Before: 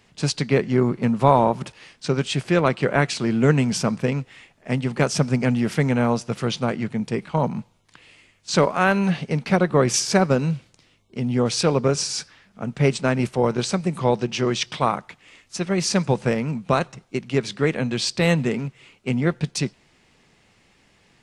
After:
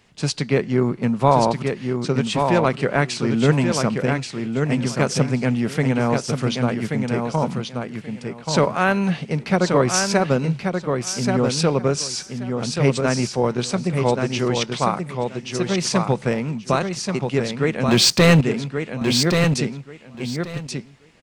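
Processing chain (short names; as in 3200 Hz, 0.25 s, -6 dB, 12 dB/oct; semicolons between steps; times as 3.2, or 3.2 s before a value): 17.88–18.41 sample leveller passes 3; feedback echo 1.131 s, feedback 18%, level -5 dB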